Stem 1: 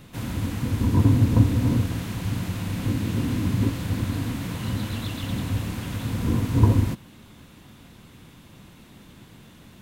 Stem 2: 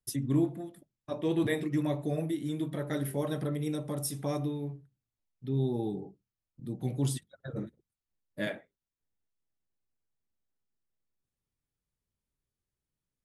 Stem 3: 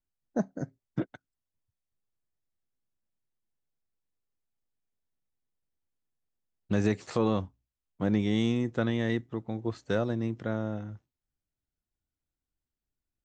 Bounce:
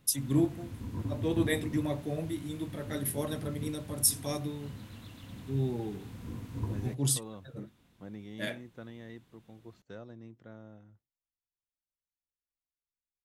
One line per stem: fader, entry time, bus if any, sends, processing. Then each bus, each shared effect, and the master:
−18.0 dB, 0.00 s, no send, no processing
−3.5 dB, 0.00 s, no send, high-shelf EQ 2,700 Hz +8.5 dB; multiband upward and downward expander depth 70%
−18.0 dB, 0.00 s, no send, no processing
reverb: not used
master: no processing

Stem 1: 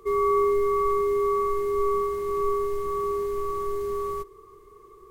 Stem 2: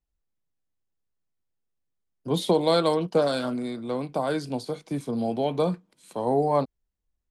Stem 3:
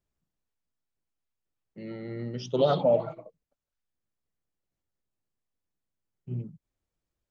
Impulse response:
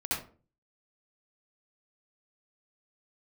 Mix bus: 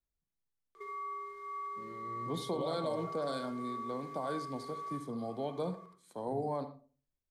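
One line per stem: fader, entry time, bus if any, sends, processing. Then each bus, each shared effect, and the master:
−1.5 dB, 0.75 s, send −6 dB, downward compressor 10 to 1, threshold −34 dBFS, peak gain reduction 15.5 dB; resonant band-pass 2,300 Hz, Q 0.93
−12.0 dB, 0.00 s, send −17.5 dB, no processing
−12.0 dB, 0.00 s, no send, no processing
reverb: on, RT60 0.40 s, pre-delay 60 ms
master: parametric band 2,700 Hz −12.5 dB 0.21 octaves; brickwall limiter −26.5 dBFS, peak gain reduction 6.5 dB

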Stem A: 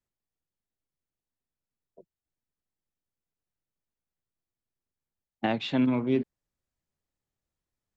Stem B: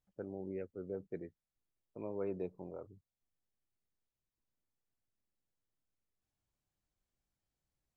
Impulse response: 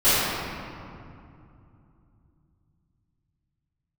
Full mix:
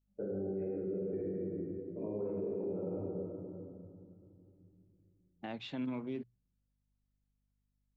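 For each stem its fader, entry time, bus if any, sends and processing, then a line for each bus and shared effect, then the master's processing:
−11.5 dB, 0.00 s, no send, mains-hum notches 60/120 Hz; mains hum 50 Hz, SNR 34 dB
−1.5 dB, 0.00 s, send −6.5 dB, downward compressor, threshold −41 dBFS, peak gain reduction 7.5 dB; every bin expanded away from the loudest bin 1.5 to 1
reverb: on, RT60 2.6 s, pre-delay 3 ms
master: brickwall limiter −30.5 dBFS, peak gain reduction 10.5 dB

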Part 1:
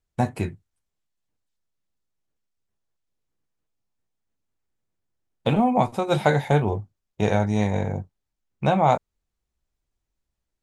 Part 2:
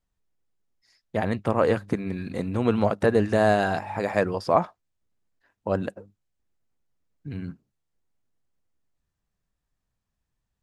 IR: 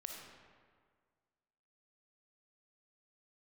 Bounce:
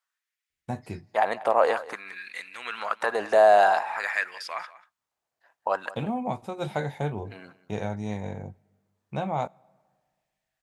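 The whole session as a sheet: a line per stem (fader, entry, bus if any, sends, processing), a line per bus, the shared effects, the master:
−10.5 dB, 0.50 s, send −23 dB, no echo send, high-pass filter 130 Hz 6 dB per octave
+1.5 dB, 0.00 s, no send, echo send −18.5 dB, brickwall limiter −11 dBFS, peak gain reduction 5 dB; auto-filter high-pass sine 0.51 Hz 670–2,100 Hz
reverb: on, RT60 1.8 s, pre-delay 15 ms
echo: single-tap delay 189 ms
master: low-shelf EQ 180 Hz +5 dB

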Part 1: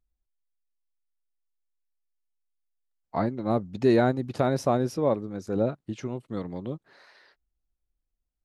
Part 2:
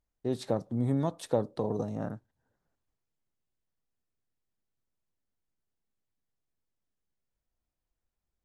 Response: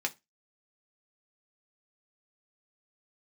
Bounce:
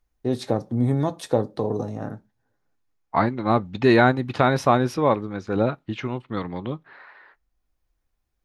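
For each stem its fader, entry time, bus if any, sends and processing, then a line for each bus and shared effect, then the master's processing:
+1.5 dB, 0.00 s, send −15 dB, low-pass that shuts in the quiet parts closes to 1,400 Hz, open at −24.5 dBFS; flat-topped bell 1,800 Hz +8.5 dB 2.5 octaves
+2.5 dB, 0.00 s, send −5.5 dB, automatic ducking −12 dB, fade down 1.75 s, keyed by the first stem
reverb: on, pre-delay 3 ms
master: low-shelf EQ 160 Hz +4 dB

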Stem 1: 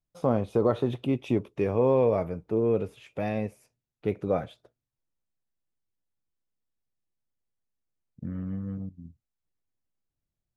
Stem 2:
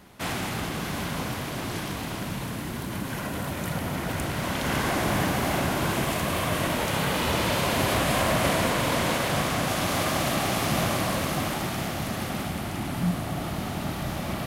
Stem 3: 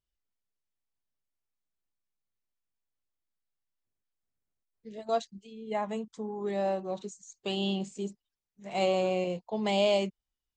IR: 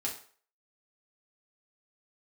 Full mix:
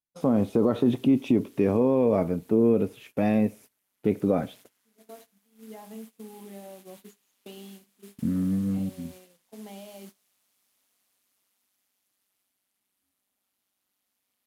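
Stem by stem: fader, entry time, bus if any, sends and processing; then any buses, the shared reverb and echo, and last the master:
+2.0 dB, 0.00 s, send −21.5 dB, low-shelf EQ 61 Hz −11.5 dB
−16.0 dB, 0.00 s, no send, first difference; ring modulation 97 Hz; hard clipping −34 dBFS, distortion −12 dB
−14.0 dB, 0.00 s, send −5 dB, downward compressor 20 to 1, threshold −33 dBFS, peak gain reduction 12.5 dB; automatic ducking −14 dB, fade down 0.70 s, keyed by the first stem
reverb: on, RT60 0.45 s, pre-delay 4 ms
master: noise gate −50 dBFS, range −18 dB; parametric band 240 Hz +10.5 dB 0.97 octaves; brickwall limiter −12.5 dBFS, peak gain reduction 7.5 dB

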